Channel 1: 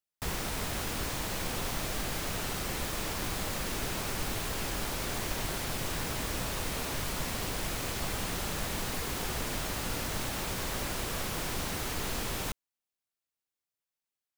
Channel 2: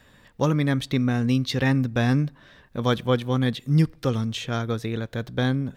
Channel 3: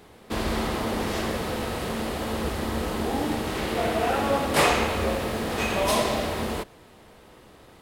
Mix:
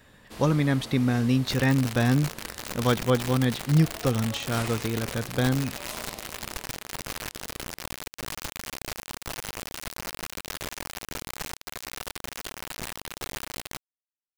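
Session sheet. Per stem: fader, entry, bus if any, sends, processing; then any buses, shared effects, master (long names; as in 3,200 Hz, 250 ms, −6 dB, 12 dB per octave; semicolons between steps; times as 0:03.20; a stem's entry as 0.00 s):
+2.0 dB, 1.25 s, bus A, no send, Bessel low-pass filter 1,500 Hz, order 2; bit reduction 5 bits
−1.0 dB, 0.00 s, no bus, no send, no processing
−16.5 dB, 0.00 s, bus A, no send, no processing
bus A: 0.0 dB, high-shelf EQ 2,500 Hz +9.5 dB; brickwall limiter −18.5 dBFS, peak gain reduction 6.5 dB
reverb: not used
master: parametric band 3,400 Hz −2 dB 0.24 octaves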